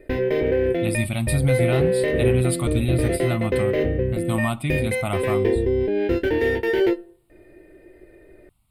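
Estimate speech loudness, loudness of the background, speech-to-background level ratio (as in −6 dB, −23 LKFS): −25.5 LKFS, −23.0 LKFS, −2.5 dB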